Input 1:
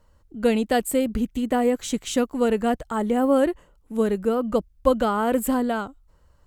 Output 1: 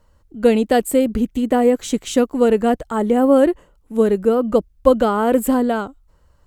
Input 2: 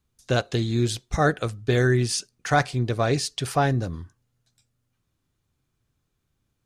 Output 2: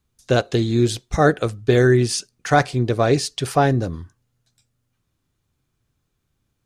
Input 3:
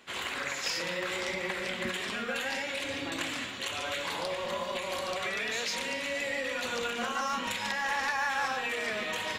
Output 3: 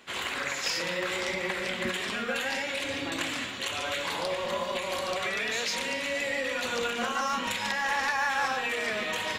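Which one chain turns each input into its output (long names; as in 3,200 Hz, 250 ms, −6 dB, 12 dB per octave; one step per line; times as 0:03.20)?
dynamic equaliser 390 Hz, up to +5 dB, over −34 dBFS, Q 0.81
level +2.5 dB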